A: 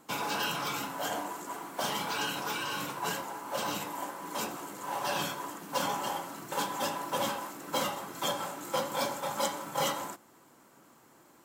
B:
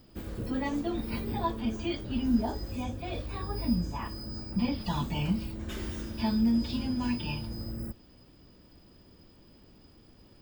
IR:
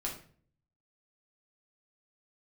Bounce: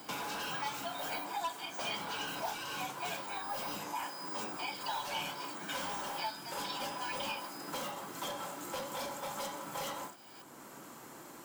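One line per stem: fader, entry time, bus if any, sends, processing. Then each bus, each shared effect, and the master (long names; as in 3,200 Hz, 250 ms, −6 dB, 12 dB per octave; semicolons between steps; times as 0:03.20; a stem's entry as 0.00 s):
−6.5 dB, 0.00 s, no send, hard clipping −30.5 dBFS, distortion −11 dB; every ending faded ahead of time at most 170 dB per second
−0.5 dB, 0.00 s, no send, Butterworth high-pass 730 Hz; comb filter 1.3 ms; hard clipping −26 dBFS, distortion −20 dB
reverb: not used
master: multiband upward and downward compressor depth 70%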